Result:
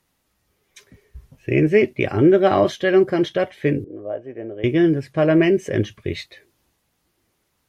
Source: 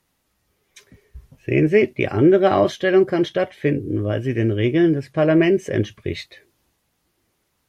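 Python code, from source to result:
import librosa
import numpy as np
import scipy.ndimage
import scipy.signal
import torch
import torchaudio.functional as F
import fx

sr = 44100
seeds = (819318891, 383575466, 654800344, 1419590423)

y = fx.bandpass_q(x, sr, hz=650.0, q=2.5, at=(3.84, 4.64))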